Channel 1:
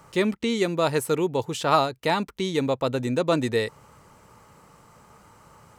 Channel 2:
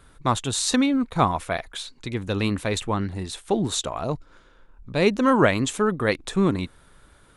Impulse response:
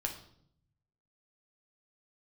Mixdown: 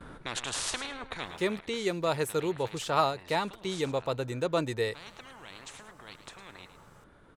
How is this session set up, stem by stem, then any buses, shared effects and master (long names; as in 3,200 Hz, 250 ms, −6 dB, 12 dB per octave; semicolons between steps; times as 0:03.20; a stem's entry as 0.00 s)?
−5.5 dB, 1.25 s, no send, no echo send, parametric band 240 Hz −9.5 dB 0.4 octaves
0:01.19 −9.5 dB → 0:01.47 −21 dB, 0.00 s, no send, echo send −11 dB, noise gate with hold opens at −45 dBFS; low-pass filter 1,000 Hz 6 dB per octave; every bin compressed towards the loudest bin 10 to 1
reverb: not used
echo: repeating echo 107 ms, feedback 21%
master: no processing